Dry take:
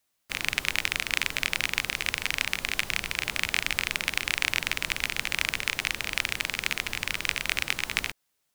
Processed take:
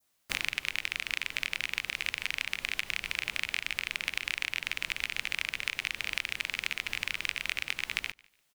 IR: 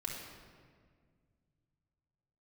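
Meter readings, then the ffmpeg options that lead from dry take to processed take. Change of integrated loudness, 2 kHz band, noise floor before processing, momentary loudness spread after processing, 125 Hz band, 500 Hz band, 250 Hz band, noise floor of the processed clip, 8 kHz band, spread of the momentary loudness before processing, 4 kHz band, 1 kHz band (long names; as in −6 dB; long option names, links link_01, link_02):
−5.0 dB, −4.5 dB, −76 dBFS, 1 LU, −10.5 dB, −9.5 dB, −10.0 dB, −73 dBFS, −9.0 dB, 3 LU, −5.0 dB, −8.5 dB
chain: -filter_complex "[0:a]adynamicequalizer=threshold=0.00891:dfrequency=2500:dqfactor=0.97:tfrequency=2500:tqfactor=0.97:attack=5:release=100:ratio=0.375:range=4:mode=boostabove:tftype=bell,acompressor=threshold=-30dB:ratio=6,asplit=2[link_01][link_02];[link_02]aecho=0:1:147|294:0.0631|0.0164[link_03];[link_01][link_03]amix=inputs=2:normalize=0,volume=2dB"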